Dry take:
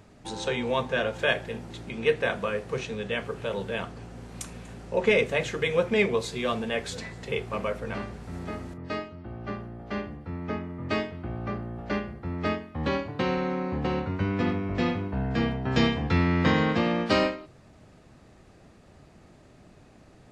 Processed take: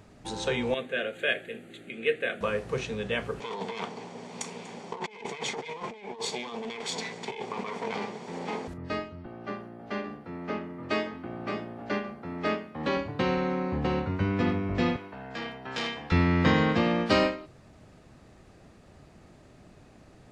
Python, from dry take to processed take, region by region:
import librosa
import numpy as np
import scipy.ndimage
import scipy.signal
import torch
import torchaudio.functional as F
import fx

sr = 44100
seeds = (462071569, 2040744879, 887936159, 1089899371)

y = fx.chain(x, sr, fx.highpass(hz=290.0, slope=12),
    fx.fixed_phaser(hz=2300.0, stages=4), at=(0.74, 2.41))
y = fx.chain(y, sr, fx.lower_of_two(delay_ms=0.89),
    fx.cabinet(low_hz=200.0, low_slope=24, high_hz=7800.0, hz=(310.0, 450.0, 850.0, 1300.0), db=(-8, 10, 4, -9)),
    fx.over_compress(threshold_db=-37.0, ratio=-1.0), at=(3.4, 8.68))
y = fx.chain(y, sr, fx.highpass(hz=210.0, slope=12),
    fx.echo_single(ms=571, db=-9.0), at=(9.26, 12.97))
y = fx.chain(y, sr, fx.highpass(hz=960.0, slope=6),
    fx.transformer_sat(knee_hz=1800.0), at=(14.96, 16.12))